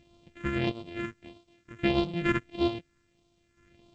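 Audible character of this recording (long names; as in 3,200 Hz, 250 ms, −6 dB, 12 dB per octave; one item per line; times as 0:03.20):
a buzz of ramps at a fixed pitch in blocks of 128 samples
chopped level 0.56 Hz, depth 65%, duty 40%
phaser sweep stages 4, 1.6 Hz, lowest notch 730–1,700 Hz
G.722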